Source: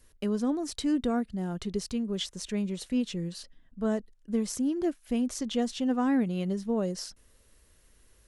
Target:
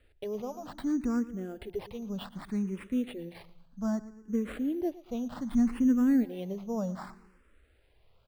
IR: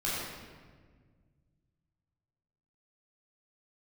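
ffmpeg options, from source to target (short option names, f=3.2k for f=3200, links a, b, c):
-filter_complex "[0:a]asplit=2[a][b];[b]aecho=0:1:115|230|345|460:0.133|0.068|0.0347|0.0177[c];[a][c]amix=inputs=2:normalize=0,asplit=3[d][e][f];[d]afade=t=out:st=5.49:d=0.02[g];[e]asubboost=boost=8:cutoff=160,afade=t=in:st=5.49:d=0.02,afade=t=out:st=6.23:d=0.02[h];[f]afade=t=in:st=6.23:d=0.02[i];[g][h][i]amix=inputs=3:normalize=0,acrusher=samples=7:mix=1:aa=0.000001,highshelf=f=2.6k:g=-10.5,asplit=2[j][k];[k]afreqshift=0.65[l];[j][l]amix=inputs=2:normalize=1"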